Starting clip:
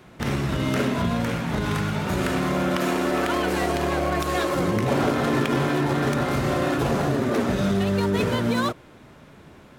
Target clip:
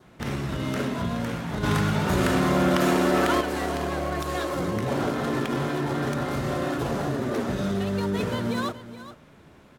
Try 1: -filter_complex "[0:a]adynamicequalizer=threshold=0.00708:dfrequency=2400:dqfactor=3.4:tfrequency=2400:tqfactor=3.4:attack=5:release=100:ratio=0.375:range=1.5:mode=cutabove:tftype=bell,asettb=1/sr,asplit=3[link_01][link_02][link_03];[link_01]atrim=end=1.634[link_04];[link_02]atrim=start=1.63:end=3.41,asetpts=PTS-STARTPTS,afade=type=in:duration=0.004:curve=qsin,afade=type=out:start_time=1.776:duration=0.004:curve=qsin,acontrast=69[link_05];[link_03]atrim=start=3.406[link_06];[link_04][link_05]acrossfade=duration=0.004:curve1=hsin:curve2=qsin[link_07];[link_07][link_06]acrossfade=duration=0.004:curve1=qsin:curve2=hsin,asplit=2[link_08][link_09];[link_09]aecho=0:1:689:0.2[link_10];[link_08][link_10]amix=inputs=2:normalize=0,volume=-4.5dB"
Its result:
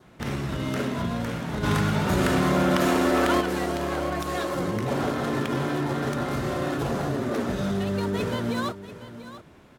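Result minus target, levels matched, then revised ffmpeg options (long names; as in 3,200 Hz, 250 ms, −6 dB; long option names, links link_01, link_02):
echo 267 ms late
-filter_complex "[0:a]adynamicequalizer=threshold=0.00708:dfrequency=2400:dqfactor=3.4:tfrequency=2400:tqfactor=3.4:attack=5:release=100:ratio=0.375:range=1.5:mode=cutabove:tftype=bell,asettb=1/sr,asplit=3[link_01][link_02][link_03];[link_01]atrim=end=1.634[link_04];[link_02]atrim=start=1.63:end=3.41,asetpts=PTS-STARTPTS,afade=type=in:duration=0.004:curve=qsin,afade=type=out:start_time=1.776:duration=0.004:curve=qsin,acontrast=69[link_05];[link_03]atrim=start=3.406[link_06];[link_04][link_05]acrossfade=duration=0.004:curve1=hsin:curve2=qsin[link_07];[link_07][link_06]acrossfade=duration=0.004:curve1=qsin:curve2=hsin,asplit=2[link_08][link_09];[link_09]aecho=0:1:422:0.2[link_10];[link_08][link_10]amix=inputs=2:normalize=0,volume=-4.5dB"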